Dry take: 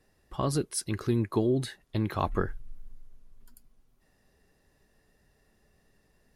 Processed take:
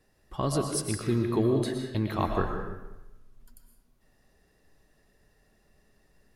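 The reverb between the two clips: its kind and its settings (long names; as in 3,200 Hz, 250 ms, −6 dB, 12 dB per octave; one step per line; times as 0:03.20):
comb and all-pass reverb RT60 1 s, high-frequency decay 0.8×, pre-delay 80 ms, DRR 3 dB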